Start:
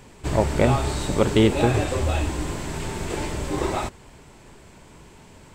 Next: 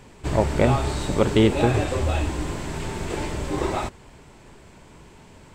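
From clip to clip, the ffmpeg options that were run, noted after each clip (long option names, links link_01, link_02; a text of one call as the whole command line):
ffmpeg -i in.wav -af "highshelf=frequency=6900:gain=-5" out.wav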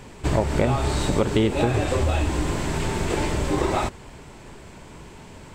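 ffmpeg -i in.wav -af "acompressor=threshold=-23dB:ratio=4,volume=5dB" out.wav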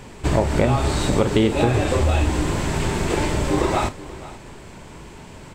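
ffmpeg -i in.wav -af "aecho=1:1:40|483:0.224|0.126,volume=2.5dB" out.wav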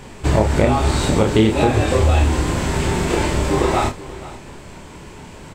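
ffmpeg -i in.wav -filter_complex "[0:a]asplit=2[link_01][link_02];[link_02]adelay=28,volume=-4.5dB[link_03];[link_01][link_03]amix=inputs=2:normalize=0,volume=1.5dB" out.wav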